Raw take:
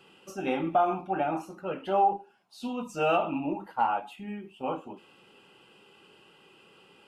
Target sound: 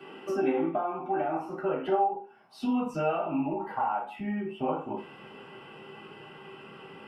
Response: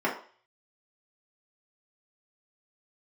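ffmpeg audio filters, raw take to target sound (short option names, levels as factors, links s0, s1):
-filter_complex "[0:a]asubboost=boost=10:cutoff=94,acompressor=threshold=0.00891:ratio=6[s0];[1:a]atrim=start_sample=2205,atrim=end_sample=4410[s1];[s0][s1]afir=irnorm=-1:irlink=0"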